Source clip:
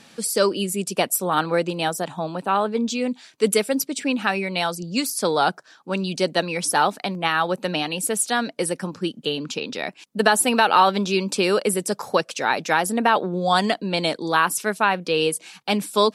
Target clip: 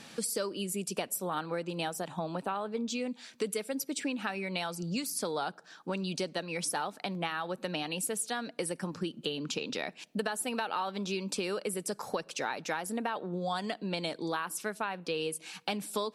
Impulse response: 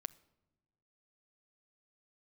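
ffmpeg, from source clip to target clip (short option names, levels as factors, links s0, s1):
-filter_complex "[0:a]acompressor=threshold=0.0282:ratio=6,asplit=2[s0][s1];[1:a]atrim=start_sample=2205[s2];[s1][s2]afir=irnorm=-1:irlink=0,volume=1.12[s3];[s0][s3]amix=inputs=2:normalize=0,volume=0.531"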